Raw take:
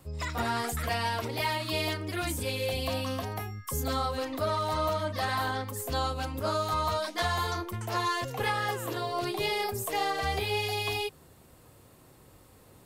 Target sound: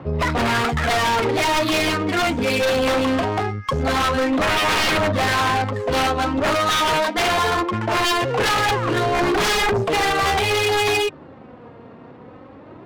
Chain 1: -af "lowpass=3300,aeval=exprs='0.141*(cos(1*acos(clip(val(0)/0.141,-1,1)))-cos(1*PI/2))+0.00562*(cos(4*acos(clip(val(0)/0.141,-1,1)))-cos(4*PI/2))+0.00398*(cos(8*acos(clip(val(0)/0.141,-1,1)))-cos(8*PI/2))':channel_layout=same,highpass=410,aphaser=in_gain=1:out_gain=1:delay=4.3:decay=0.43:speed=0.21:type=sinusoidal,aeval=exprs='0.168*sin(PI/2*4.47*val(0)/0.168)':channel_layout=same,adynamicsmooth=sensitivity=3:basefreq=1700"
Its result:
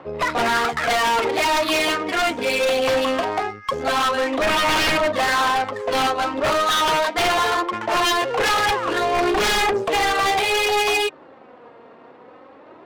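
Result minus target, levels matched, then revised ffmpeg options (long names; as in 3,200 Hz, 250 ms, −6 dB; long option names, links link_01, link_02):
125 Hz band −12.0 dB
-af "lowpass=3300,aeval=exprs='0.141*(cos(1*acos(clip(val(0)/0.141,-1,1)))-cos(1*PI/2))+0.00562*(cos(4*acos(clip(val(0)/0.141,-1,1)))-cos(4*PI/2))+0.00398*(cos(8*acos(clip(val(0)/0.141,-1,1)))-cos(8*PI/2))':channel_layout=same,highpass=130,aphaser=in_gain=1:out_gain=1:delay=4.3:decay=0.43:speed=0.21:type=sinusoidal,aeval=exprs='0.168*sin(PI/2*4.47*val(0)/0.168)':channel_layout=same,adynamicsmooth=sensitivity=3:basefreq=1700"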